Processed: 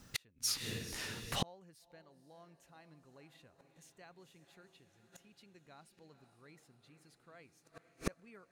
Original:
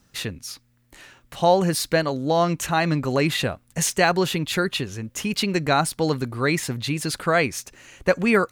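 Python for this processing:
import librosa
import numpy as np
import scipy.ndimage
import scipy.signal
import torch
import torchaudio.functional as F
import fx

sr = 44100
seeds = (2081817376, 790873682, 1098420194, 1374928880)

p1 = x + fx.echo_diffused(x, sr, ms=489, feedback_pct=63, wet_db=-11.5, dry=0)
p2 = fx.gate_flip(p1, sr, shuts_db=-22.0, range_db=-40)
y = p2 * librosa.db_to_amplitude(1.0)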